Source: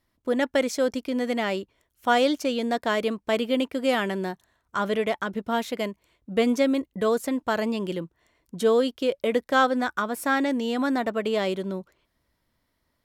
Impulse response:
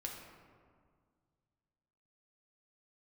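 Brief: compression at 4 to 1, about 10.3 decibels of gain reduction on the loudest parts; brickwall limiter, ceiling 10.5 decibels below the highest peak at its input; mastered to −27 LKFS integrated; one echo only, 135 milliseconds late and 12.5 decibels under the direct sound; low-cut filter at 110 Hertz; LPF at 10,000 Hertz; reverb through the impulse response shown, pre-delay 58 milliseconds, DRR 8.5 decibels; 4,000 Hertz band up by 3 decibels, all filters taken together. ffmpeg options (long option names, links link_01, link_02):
-filter_complex "[0:a]highpass=110,lowpass=10000,equalizer=frequency=4000:width_type=o:gain=4,acompressor=threshold=-29dB:ratio=4,alimiter=level_in=2dB:limit=-24dB:level=0:latency=1,volume=-2dB,aecho=1:1:135:0.237,asplit=2[link_01][link_02];[1:a]atrim=start_sample=2205,adelay=58[link_03];[link_02][link_03]afir=irnorm=-1:irlink=0,volume=-7.5dB[link_04];[link_01][link_04]amix=inputs=2:normalize=0,volume=8.5dB"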